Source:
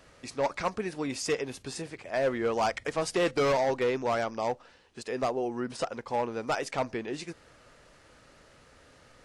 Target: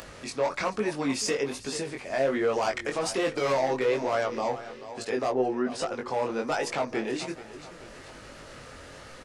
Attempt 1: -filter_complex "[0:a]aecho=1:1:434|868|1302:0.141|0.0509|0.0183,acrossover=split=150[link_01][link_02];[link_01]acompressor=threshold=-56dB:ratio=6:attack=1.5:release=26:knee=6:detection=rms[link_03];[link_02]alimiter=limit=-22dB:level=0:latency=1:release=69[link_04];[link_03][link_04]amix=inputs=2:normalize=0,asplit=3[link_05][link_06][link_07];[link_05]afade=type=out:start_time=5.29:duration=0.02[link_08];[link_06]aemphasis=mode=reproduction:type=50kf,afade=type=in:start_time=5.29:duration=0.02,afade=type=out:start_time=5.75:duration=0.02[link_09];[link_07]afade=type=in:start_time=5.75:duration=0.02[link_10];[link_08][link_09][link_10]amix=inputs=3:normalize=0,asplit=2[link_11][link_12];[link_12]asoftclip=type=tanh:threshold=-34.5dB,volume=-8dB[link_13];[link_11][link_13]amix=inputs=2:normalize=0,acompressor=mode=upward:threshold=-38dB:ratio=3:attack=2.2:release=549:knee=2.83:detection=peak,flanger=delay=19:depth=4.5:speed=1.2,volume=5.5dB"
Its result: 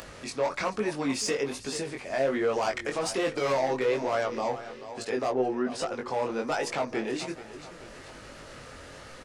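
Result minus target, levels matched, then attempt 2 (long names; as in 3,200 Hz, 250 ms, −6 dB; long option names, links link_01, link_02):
soft clipping: distortion +8 dB
-filter_complex "[0:a]aecho=1:1:434|868|1302:0.141|0.0509|0.0183,acrossover=split=150[link_01][link_02];[link_01]acompressor=threshold=-56dB:ratio=6:attack=1.5:release=26:knee=6:detection=rms[link_03];[link_02]alimiter=limit=-22dB:level=0:latency=1:release=69[link_04];[link_03][link_04]amix=inputs=2:normalize=0,asplit=3[link_05][link_06][link_07];[link_05]afade=type=out:start_time=5.29:duration=0.02[link_08];[link_06]aemphasis=mode=reproduction:type=50kf,afade=type=in:start_time=5.29:duration=0.02,afade=type=out:start_time=5.75:duration=0.02[link_09];[link_07]afade=type=in:start_time=5.75:duration=0.02[link_10];[link_08][link_09][link_10]amix=inputs=3:normalize=0,asplit=2[link_11][link_12];[link_12]asoftclip=type=tanh:threshold=-27dB,volume=-8dB[link_13];[link_11][link_13]amix=inputs=2:normalize=0,acompressor=mode=upward:threshold=-38dB:ratio=3:attack=2.2:release=549:knee=2.83:detection=peak,flanger=delay=19:depth=4.5:speed=1.2,volume=5.5dB"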